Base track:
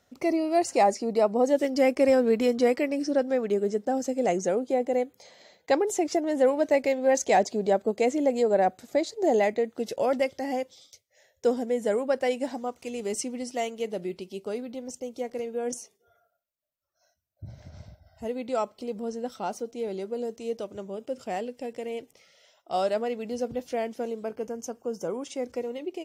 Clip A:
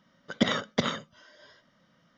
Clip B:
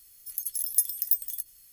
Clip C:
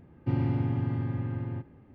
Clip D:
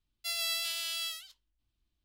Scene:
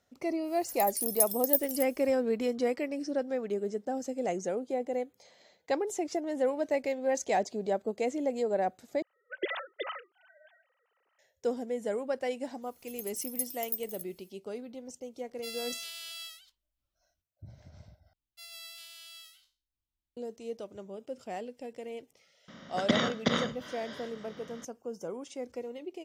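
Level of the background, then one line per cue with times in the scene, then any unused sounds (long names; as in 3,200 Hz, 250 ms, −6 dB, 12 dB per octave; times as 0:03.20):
base track −7 dB
0:00.42: mix in B −3 dB, fades 0.10 s + wow of a warped record 78 rpm, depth 250 cents
0:09.02: overwrite with A −9 dB + three sine waves on the formant tracks
0:12.61: mix in B −10 dB, fades 0.05 s
0:15.18: mix in D −7 dB
0:18.13: overwrite with D −14 dB + peak hold with a decay on every bin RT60 0.36 s
0:22.48: mix in A −3.5 dB + compressor on every frequency bin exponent 0.6
not used: C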